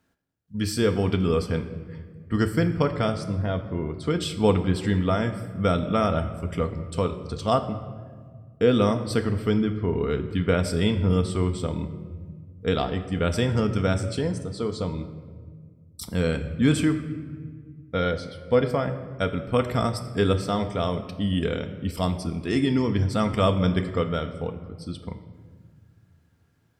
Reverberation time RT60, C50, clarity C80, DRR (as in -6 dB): 1.7 s, 11.0 dB, 12.5 dB, 6.0 dB